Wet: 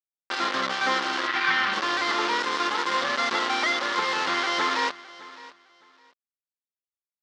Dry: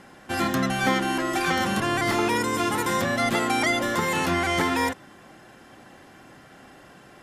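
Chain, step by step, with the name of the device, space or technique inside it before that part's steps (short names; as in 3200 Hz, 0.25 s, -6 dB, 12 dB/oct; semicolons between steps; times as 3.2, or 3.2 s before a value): hand-held game console (bit-crush 4-bit; speaker cabinet 490–4900 Hz, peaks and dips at 680 Hz -7 dB, 1200 Hz +4 dB, 2500 Hz -5 dB); 1.27–1.73 graphic EQ 125/500/2000/8000 Hz +6/-8/+7/-11 dB; feedback echo 0.611 s, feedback 22%, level -19 dB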